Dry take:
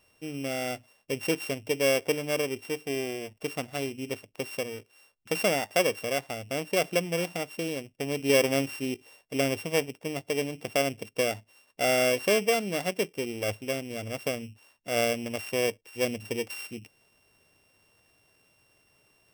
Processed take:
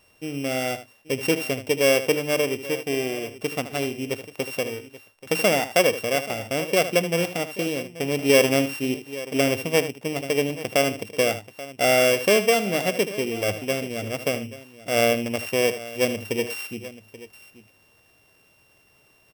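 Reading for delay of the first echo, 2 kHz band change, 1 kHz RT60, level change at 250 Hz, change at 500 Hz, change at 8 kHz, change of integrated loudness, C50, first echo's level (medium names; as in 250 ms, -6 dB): 77 ms, +6.0 dB, no reverb, +6.0 dB, +6.0 dB, +5.5 dB, +6.0 dB, no reverb, -12.0 dB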